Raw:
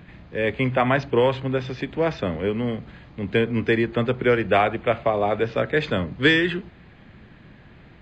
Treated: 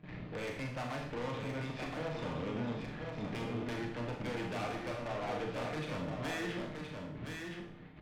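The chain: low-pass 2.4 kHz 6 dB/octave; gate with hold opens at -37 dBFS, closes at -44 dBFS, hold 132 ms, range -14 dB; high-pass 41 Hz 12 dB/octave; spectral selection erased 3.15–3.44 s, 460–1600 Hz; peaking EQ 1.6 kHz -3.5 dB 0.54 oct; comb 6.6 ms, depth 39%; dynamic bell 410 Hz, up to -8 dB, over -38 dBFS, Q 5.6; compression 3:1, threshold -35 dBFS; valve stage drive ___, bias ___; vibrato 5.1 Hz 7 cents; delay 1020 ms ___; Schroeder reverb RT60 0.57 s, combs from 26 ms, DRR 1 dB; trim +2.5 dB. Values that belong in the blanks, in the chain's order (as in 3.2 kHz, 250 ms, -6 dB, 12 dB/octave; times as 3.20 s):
41 dB, 0.75, -5 dB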